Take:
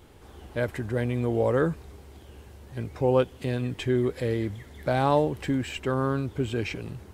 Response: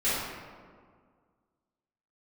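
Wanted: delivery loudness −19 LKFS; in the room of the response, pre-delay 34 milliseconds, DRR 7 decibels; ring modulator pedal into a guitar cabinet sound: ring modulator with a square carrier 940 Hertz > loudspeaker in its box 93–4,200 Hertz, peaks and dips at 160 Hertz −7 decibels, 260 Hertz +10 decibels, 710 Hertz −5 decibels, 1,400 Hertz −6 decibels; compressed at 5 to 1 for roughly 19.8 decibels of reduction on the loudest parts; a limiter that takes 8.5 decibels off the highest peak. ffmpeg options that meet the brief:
-filter_complex "[0:a]acompressor=threshold=-40dB:ratio=5,alimiter=level_in=8.5dB:limit=-24dB:level=0:latency=1,volume=-8.5dB,asplit=2[link_01][link_02];[1:a]atrim=start_sample=2205,adelay=34[link_03];[link_02][link_03]afir=irnorm=-1:irlink=0,volume=-19dB[link_04];[link_01][link_04]amix=inputs=2:normalize=0,aeval=exprs='val(0)*sgn(sin(2*PI*940*n/s))':channel_layout=same,highpass=93,equalizer=frequency=160:width_type=q:width=4:gain=-7,equalizer=frequency=260:width_type=q:width=4:gain=10,equalizer=frequency=710:width_type=q:width=4:gain=-5,equalizer=frequency=1400:width_type=q:width=4:gain=-6,lowpass=frequency=4200:width=0.5412,lowpass=frequency=4200:width=1.3066,volume=25.5dB"

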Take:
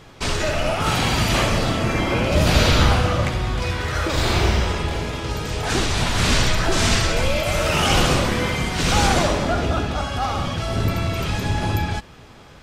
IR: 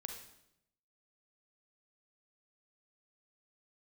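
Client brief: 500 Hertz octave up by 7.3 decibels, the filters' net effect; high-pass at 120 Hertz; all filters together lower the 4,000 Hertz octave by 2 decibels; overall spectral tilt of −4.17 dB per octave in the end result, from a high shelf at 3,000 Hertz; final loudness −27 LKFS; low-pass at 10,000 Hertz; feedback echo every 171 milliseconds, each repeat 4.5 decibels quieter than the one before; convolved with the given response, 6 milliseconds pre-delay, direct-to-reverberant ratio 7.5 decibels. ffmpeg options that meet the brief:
-filter_complex "[0:a]highpass=120,lowpass=10000,equalizer=frequency=500:width_type=o:gain=9,highshelf=frequency=3000:gain=6,equalizer=frequency=4000:width_type=o:gain=-7.5,aecho=1:1:171|342|513|684|855|1026|1197|1368|1539:0.596|0.357|0.214|0.129|0.0772|0.0463|0.0278|0.0167|0.01,asplit=2[link_01][link_02];[1:a]atrim=start_sample=2205,adelay=6[link_03];[link_02][link_03]afir=irnorm=-1:irlink=0,volume=-5dB[link_04];[link_01][link_04]amix=inputs=2:normalize=0,volume=-11dB"

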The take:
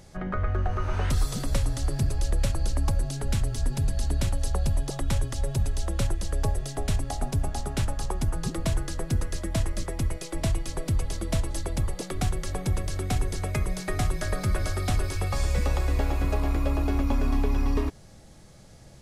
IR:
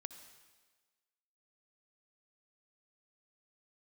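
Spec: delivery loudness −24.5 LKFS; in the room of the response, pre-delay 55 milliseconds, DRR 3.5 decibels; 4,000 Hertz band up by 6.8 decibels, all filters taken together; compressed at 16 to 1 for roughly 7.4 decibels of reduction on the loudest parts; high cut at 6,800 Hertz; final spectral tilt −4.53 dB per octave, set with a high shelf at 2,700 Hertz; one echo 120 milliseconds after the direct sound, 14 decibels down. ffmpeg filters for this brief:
-filter_complex "[0:a]lowpass=6800,highshelf=frequency=2700:gain=6,equalizer=frequency=4000:width_type=o:gain=4,acompressor=threshold=-27dB:ratio=16,aecho=1:1:120:0.2,asplit=2[link_01][link_02];[1:a]atrim=start_sample=2205,adelay=55[link_03];[link_02][link_03]afir=irnorm=-1:irlink=0,volume=0.5dB[link_04];[link_01][link_04]amix=inputs=2:normalize=0,volume=7.5dB"

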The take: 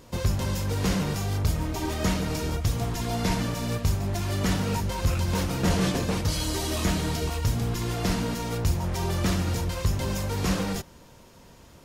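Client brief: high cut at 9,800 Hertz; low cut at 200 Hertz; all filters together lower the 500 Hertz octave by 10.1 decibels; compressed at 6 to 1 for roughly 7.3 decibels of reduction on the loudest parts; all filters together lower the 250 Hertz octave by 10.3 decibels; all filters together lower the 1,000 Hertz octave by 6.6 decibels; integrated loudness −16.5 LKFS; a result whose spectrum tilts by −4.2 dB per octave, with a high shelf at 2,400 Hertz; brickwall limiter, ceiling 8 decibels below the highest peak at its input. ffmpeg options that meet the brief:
ffmpeg -i in.wav -af "highpass=200,lowpass=9800,equalizer=frequency=250:width_type=o:gain=-9,equalizer=frequency=500:width_type=o:gain=-8.5,equalizer=frequency=1000:width_type=o:gain=-3.5,highshelf=frequency=2400:gain=-8,acompressor=threshold=-38dB:ratio=6,volume=26.5dB,alimiter=limit=-6.5dB:level=0:latency=1" out.wav

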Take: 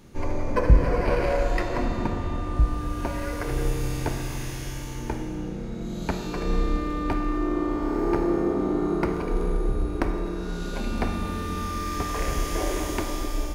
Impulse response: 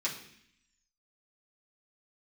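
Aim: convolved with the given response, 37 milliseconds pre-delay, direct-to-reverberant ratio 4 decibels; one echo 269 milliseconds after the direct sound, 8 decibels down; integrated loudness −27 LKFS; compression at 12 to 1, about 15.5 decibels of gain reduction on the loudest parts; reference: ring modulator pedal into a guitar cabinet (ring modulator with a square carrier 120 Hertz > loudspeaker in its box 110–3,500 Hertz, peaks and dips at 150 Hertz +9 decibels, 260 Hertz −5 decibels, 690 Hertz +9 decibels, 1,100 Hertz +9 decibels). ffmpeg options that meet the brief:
-filter_complex "[0:a]acompressor=threshold=-25dB:ratio=12,aecho=1:1:269:0.398,asplit=2[link_01][link_02];[1:a]atrim=start_sample=2205,adelay=37[link_03];[link_02][link_03]afir=irnorm=-1:irlink=0,volume=-9dB[link_04];[link_01][link_04]amix=inputs=2:normalize=0,aeval=exprs='val(0)*sgn(sin(2*PI*120*n/s))':channel_layout=same,highpass=110,equalizer=frequency=150:width_type=q:width=4:gain=9,equalizer=frequency=260:width_type=q:width=4:gain=-5,equalizer=frequency=690:width_type=q:width=4:gain=9,equalizer=frequency=1100:width_type=q:width=4:gain=9,lowpass=frequency=3500:width=0.5412,lowpass=frequency=3500:width=1.3066,volume=-1dB"

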